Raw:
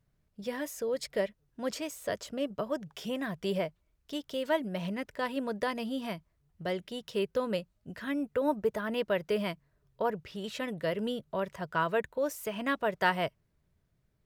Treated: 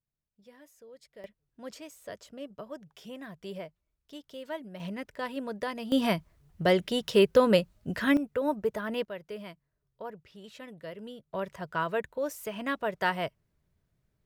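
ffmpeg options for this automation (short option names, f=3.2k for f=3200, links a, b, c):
-af "asetnsamples=n=441:p=0,asendcmd='1.24 volume volume -8.5dB;4.8 volume volume -2dB;5.92 volume volume 10dB;8.17 volume volume 0dB;9.05 volume volume -10dB;11.34 volume volume -1dB',volume=-19dB"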